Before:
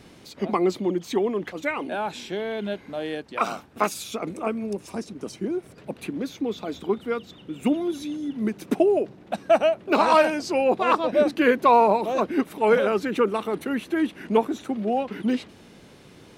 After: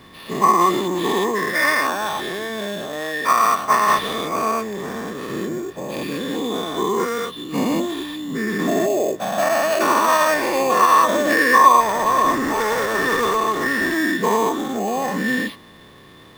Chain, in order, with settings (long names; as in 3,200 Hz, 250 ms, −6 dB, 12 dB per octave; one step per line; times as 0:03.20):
every bin's largest magnitude spread in time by 240 ms
dynamic equaliser 1,800 Hz, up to +6 dB, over −40 dBFS, Q 5
brickwall limiter −8 dBFS, peak gain reduction 9.5 dB
0:11.80–0:13.98: asymmetric clip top −19.5 dBFS, bottom −12 dBFS
sample-rate reduction 7,100 Hz, jitter 0%
hollow resonant body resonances 1,100/1,800/3,500 Hz, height 16 dB, ringing for 40 ms
level −3.5 dB